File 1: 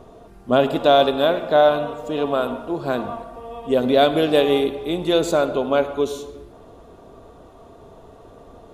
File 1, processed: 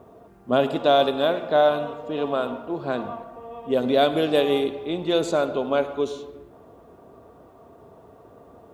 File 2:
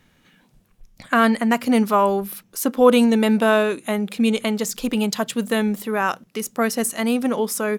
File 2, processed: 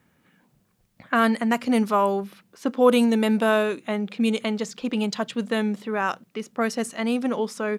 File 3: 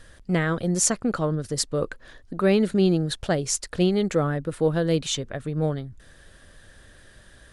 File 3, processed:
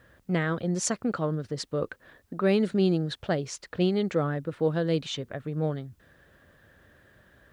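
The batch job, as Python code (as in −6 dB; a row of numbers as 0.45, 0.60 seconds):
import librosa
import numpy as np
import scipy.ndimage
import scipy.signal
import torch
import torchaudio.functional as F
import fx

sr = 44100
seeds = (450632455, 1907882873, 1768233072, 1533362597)

y = fx.env_lowpass(x, sr, base_hz=2000.0, full_db=-12.5)
y = scipy.signal.sosfilt(scipy.signal.butter(2, 84.0, 'highpass', fs=sr, output='sos'), y)
y = fx.quant_dither(y, sr, seeds[0], bits=12, dither='triangular')
y = y * librosa.db_to_amplitude(-3.5)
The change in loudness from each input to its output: −3.5, −3.5, −4.0 LU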